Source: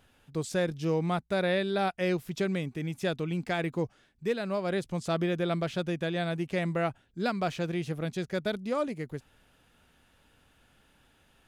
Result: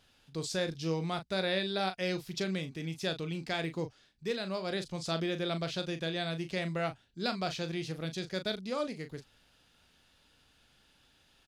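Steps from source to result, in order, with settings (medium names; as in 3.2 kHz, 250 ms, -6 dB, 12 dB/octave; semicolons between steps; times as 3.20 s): peaking EQ 4.6 kHz +12 dB 1.2 oct; doubling 37 ms -9.5 dB; trim -5.5 dB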